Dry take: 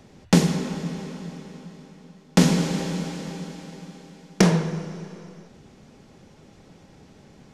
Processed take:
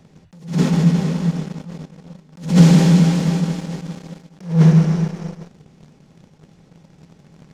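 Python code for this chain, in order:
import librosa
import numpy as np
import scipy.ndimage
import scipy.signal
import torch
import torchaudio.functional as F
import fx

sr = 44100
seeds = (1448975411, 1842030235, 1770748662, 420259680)

y = fx.peak_eq(x, sr, hz=160.0, db=12.0, octaves=0.46)
y = fx.leveller(y, sr, passes=2)
y = fx.attack_slew(y, sr, db_per_s=160.0)
y = F.gain(torch.from_numpy(y), 1.0).numpy()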